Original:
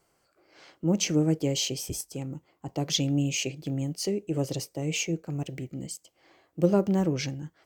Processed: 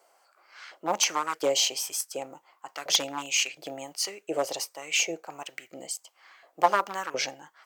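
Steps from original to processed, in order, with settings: one-sided fold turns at -19 dBFS; LFO high-pass saw up 1.4 Hz 590–1500 Hz; gain +4.5 dB

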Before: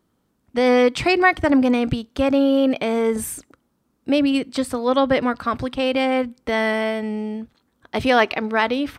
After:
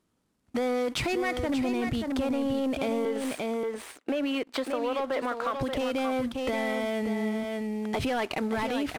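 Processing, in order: CVSD 64 kbps; 3.05–5.61 three-band isolator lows -23 dB, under 320 Hz, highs -12 dB, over 3400 Hz; sample leveller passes 2; limiter -13.5 dBFS, peak gain reduction 8.5 dB; echo 0.581 s -7 dB; compressor 3:1, threshold -25 dBFS, peak gain reduction 8 dB; gain -3 dB

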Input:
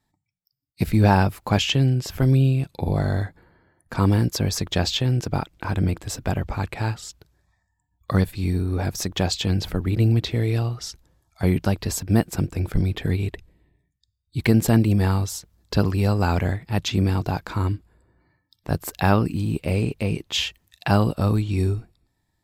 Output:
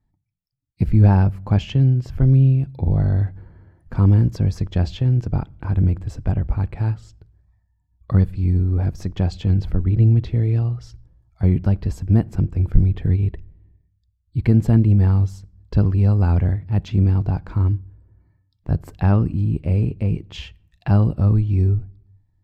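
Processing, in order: 3.2–4.36 G.711 law mismatch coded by mu; RIAA curve playback; notch 3700 Hz, Q 19; on a send: reverb RT60 0.60 s, pre-delay 6 ms, DRR 23.5 dB; on the sum: gain -7 dB

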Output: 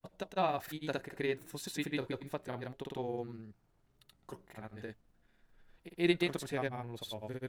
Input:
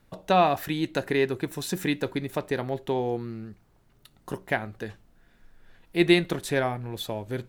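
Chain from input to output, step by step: grains, pitch spread up and down by 0 st; gain -9 dB

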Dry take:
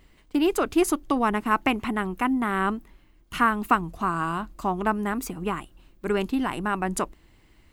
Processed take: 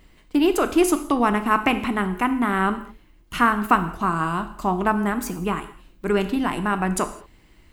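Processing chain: non-linear reverb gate 0.24 s falling, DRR 8.5 dB; gain +3 dB

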